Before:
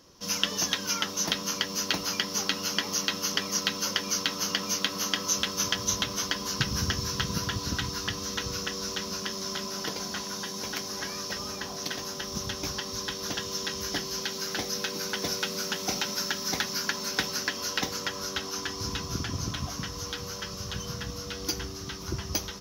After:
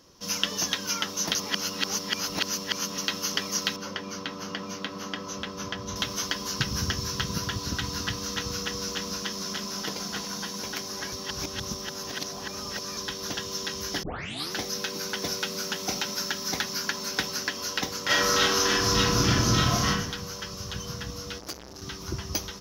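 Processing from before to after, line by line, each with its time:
1.35–2.98 s: reverse
3.76–5.96 s: low-pass 1.4 kHz 6 dB/octave
7.55–10.62 s: delay 284 ms -6.5 dB
11.12–12.97 s: reverse
14.03 s: tape start 0.50 s
18.05–19.88 s: reverb throw, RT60 0.84 s, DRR -11.5 dB
21.38–21.82 s: transformer saturation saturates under 3.8 kHz

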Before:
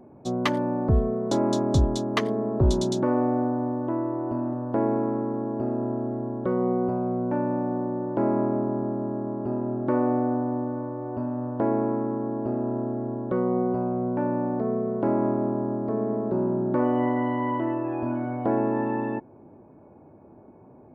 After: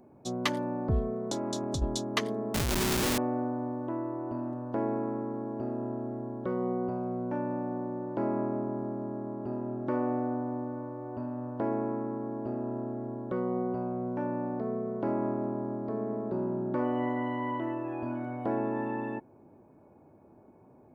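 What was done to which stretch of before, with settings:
1.13–1.82 s: compression, threshold -22 dBFS
2.54–3.18 s: Schmitt trigger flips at -27 dBFS
whole clip: treble shelf 2.8 kHz +10.5 dB; trim -7 dB

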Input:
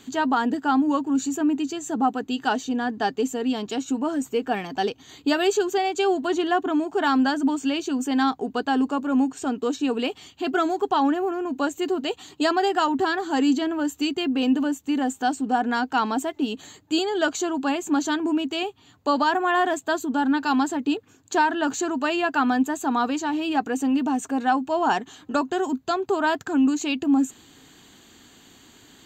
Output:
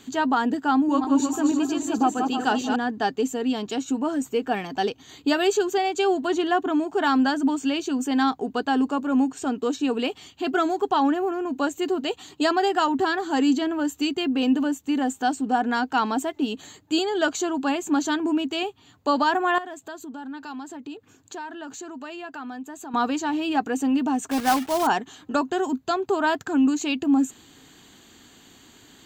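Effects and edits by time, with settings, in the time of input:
0.73–2.76 s: backward echo that repeats 157 ms, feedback 63%, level -5 dB
19.58–22.94 s: compression 2.5:1, threshold -40 dBFS
24.31–24.88 s: block-companded coder 3-bit

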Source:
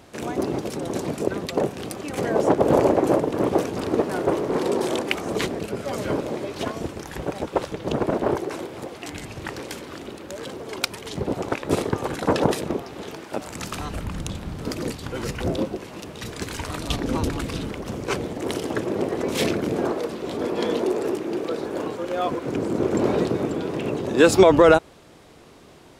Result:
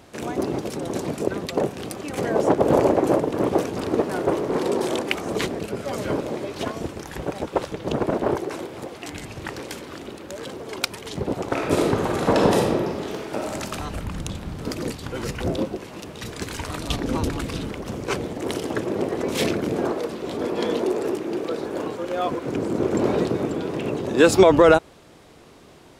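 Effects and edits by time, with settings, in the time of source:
11.47–13.53 s: reverb throw, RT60 1.3 s, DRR -1 dB

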